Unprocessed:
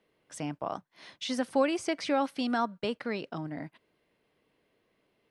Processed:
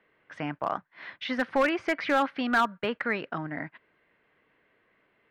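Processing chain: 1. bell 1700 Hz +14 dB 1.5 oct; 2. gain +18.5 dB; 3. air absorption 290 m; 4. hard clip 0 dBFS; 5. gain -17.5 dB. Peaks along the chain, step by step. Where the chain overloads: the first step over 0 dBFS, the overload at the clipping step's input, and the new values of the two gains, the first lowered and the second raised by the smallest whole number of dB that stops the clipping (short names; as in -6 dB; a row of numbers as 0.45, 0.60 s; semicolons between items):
-9.5, +9.0, +7.5, 0.0, -17.5 dBFS; step 2, 7.5 dB; step 2 +10.5 dB, step 5 -9.5 dB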